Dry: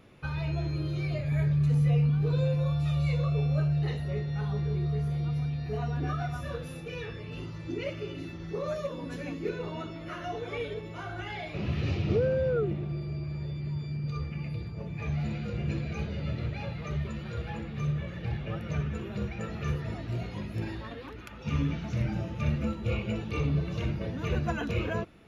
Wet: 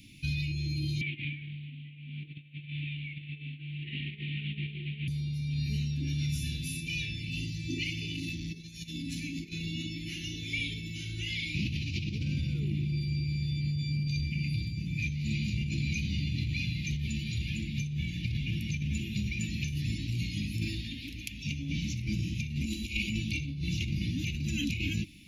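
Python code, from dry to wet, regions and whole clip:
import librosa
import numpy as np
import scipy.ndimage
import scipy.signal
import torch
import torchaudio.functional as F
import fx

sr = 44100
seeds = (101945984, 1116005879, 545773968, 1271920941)

y = fx.chain(x, sr, fx.delta_mod(bps=16000, step_db=-40.0),
    fx.highpass(hz=280.0, slope=12),
    fx.over_compress(threshold_db=-40.0, ratio=-0.5), at=(1.01, 5.08))
y = fx.chain(y, sr, fx.over_compress(threshold_db=-39.0, ratio=-1.0),
    fx.transformer_sat(knee_hz=380.0), at=(8.06, 9.53))
y = fx.chain(y, sr, fx.high_shelf(hz=5500.0, db=8.0),
    fx.over_compress(threshold_db=-31.0, ratio=-0.5),
    fx.fixed_phaser(hz=320.0, stages=4), at=(22.65, 23.1))
y = scipy.signal.sosfilt(scipy.signal.cheby1(4, 1.0, [300.0, 2300.0], 'bandstop', fs=sr, output='sos'), y)
y = fx.high_shelf(y, sr, hz=2300.0, db=11.5)
y = fx.over_compress(y, sr, threshold_db=-33.0, ratio=-1.0)
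y = y * 10.0 ** (2.0 / 20.0)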